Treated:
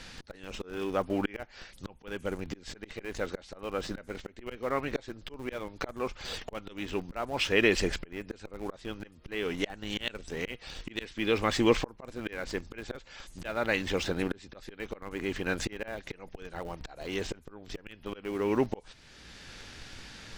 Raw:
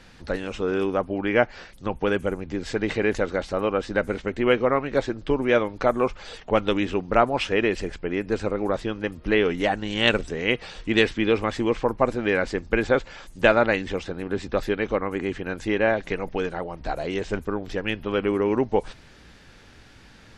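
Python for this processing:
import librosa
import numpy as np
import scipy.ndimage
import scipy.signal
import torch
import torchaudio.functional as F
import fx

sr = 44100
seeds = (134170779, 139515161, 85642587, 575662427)

p1 = fx.peak_eq(x, sr, hz=5600.0, db=8.0, octaves=2.8)
p2 = fx.auto_swell(p1, sr, attack_ms=783.0)
p3 = fx.schmitt(p2, sr, flips_db=-36.5)
y = p2 + (p3 * 10.0 ** (-11.5 / 20.0))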